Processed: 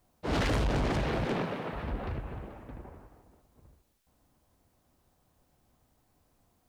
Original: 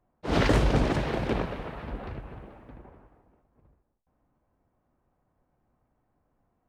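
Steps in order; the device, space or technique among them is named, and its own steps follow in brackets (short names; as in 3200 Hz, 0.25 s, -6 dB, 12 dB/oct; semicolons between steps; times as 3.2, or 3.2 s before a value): 1.25–1.73 HPF 130 Hz 24 dB/oct; open-reel tape (soft clip -28 dBFS, distortion -6 dB; bell 77 Hz +3.5 dB; white noise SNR 42 dB); gain +2 dB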